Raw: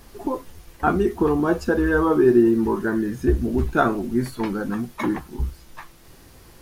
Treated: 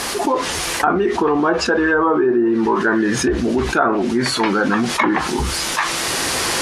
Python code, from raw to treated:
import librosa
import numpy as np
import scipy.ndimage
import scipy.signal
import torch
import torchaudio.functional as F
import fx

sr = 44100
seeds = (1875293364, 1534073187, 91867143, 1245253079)

y = fx.recorder_agc(x, sr, target_db=-10.0, rise_db_per_s=8.4, max_gain_db=30)
y = fx.highpass(y, sr, hz=950.0, slope=6)
y = fx.env_lowpass_down(y, sr, base_hz=1400.0, full_db=-20.0)
y = scipy.signal.sosfilt(scipy.signal.butter(4, 11000.0, 'lowpass', fs=sr, output='sos'), y)
y = fx.env_flatten(y, sr, amount_pct=70)
y = y * librosa.db_to_amplitude(6.0)